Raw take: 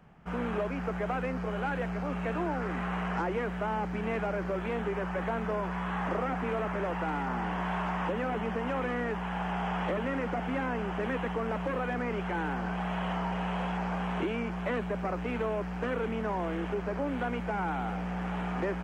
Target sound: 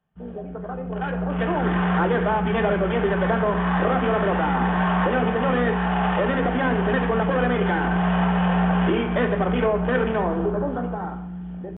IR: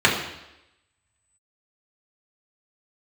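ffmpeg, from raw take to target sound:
-filter_complex "[0:a]aemphasis=mode=production:type=75kf,atempo=1.6,dynaudnorm=f=110:g=21:m=12.5dB,afwtdn=0.0447,aresample=8000,aresample=44100,asplit=2[a][b];[1:a]atrim=start_sample=2205[c];[b][c]afir=irnorm=-1:irlink=0,volume=-22.5dB[d];[a][d]amix=inputs=2:normalize=0,volume=-5.5dB"

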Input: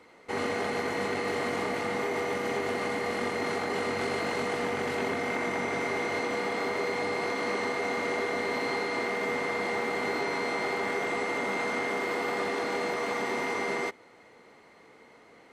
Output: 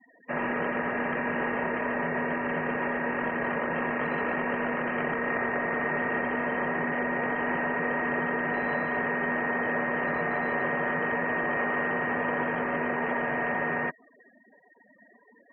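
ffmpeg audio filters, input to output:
-af "highpass=f=520:t=q:w=0.5412,highpass=f=520:t=q:w=1.307,lowpass=f=2.9k:t=q:w=0.5176,lowpass=f=2.9k:t=q:w=0.7071,lowpass=f=2.9k:t=q:w=1.932,afreqshift=-240,afftfilt=real='re*gte(hypot(re,im),0.00501)':imag='im*gte(hypot(re,im),0.00501)':win_size=1024:overlap=0.75,volume=4dB"

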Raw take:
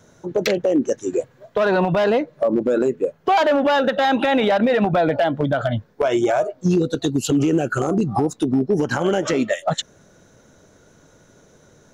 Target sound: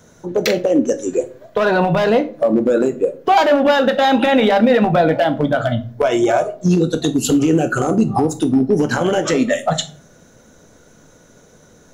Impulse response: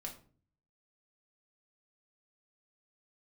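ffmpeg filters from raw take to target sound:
-filter_complex "[0:a]asplit=2[a][b];[1:a]atrim=start_sample=2205,highshelf=f=6.9k:g=11[c];[b][c]afir=irnorm=-1:irlink=0,volume=0.5dB[d];[a][d]amix=inputs=2:normalize=0,volume=-1dB"

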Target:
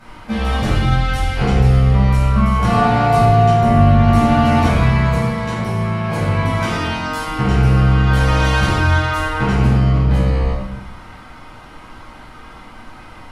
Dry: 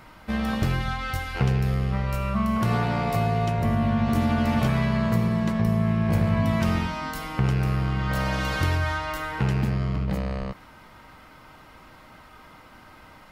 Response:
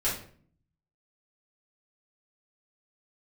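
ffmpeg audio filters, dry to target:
-filter_complex "[0:a]asettb=1/sr,asplit=3[a][b][c];[a]atrim=end=5.084[d];[b]atrim=start=5.08:end=7.26,asetpts=PTS-STARTPTS,afade=t=in:d=0.004:c=qsin,afade=t=out:st=2.176:d=0.004:c=qsin,lowshelf=f=180:g=-11[e];[c]atrim=start=7.256[f];[d][e]acrossfade=d=0.004:c1=hsin:c2=qsin[g];[g][f]acrossfade=d=0.004:c1=qsin:c2=hsin[h];[1:a]atrim=start_sample=2205,asetrate=23814,aresample=44100[i];[h][i]afir=irnorm=-1:irlink=0,volume=-3.5dB"

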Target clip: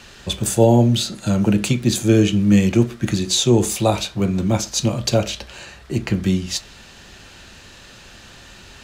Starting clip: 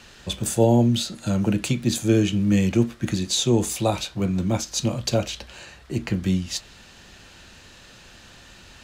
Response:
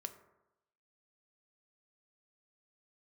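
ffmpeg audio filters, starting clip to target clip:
-filter_complex "[0:a]asplit=2[a][b];[1:a]atrim=start_sample=2205,atrim=end_sample=6174[c];[b][c]afir=irnorm=-1:irlink=0,volume=0.5dB[d];[a][d]amix=inputs=2:normalize=0"

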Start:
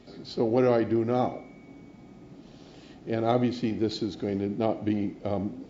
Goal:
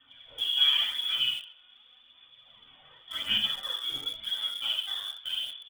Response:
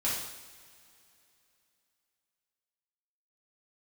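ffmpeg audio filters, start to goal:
-filter_complex "[0:a]aemphasis=mode=production:type=riaa,lowpass=f=3.1k:t=q:w=0.5098,lowpass=f=3.1k:t=q:w=0.6013,lowpass=f=3.1k:t=q:w=0.9,lowpass=f=3.1k:t=q:w=2.563,afreqshift=-3700,asplit=2[a][b];[b]aecho=0:1:32|79:0.133|0.562[c];[a][c]amix=inputs=2:normalize=0,flanger=delay=0.6:depth=6.4:regen=-8:speed=0.38:shape=triangular,asettb=1/sr,asplit=3[d][e][f];[d]atrim=end=1.634[g];[e]atrim=start=1.63:end=3.51,asetpts=PTS-STARTPTS,afade=t=in:d=0.004:c=qsin,afade=t=out:st=1.876:d=0.004:c=qsin,equalizer=f=150:w=1.3:g=11.5[h];[f]atrim=start=3.506[i];[g][h]acrossfade=d=0.004:c1=hsin:c2=qsin[j];[j][i]acrossfade=d=0.004:c1=qsin:c2=hsin[k];[1:a]atrim=start_sample=2205,atrim=end_sample=3528[l];[k][l]afir=irnorm=-1:irlink=0,asplit=2[m][n];[n]acrusher=bits=4:mix=0:aa=0.000001,volume=-10.5dB[o];[m][o]amix=inputs=2:normalize=0,aphaser=in_gain=1:out_gain=1:delay=2.8:decay=0.36:speed=0.9:type=sinusoidal,volume=-7.5dB"

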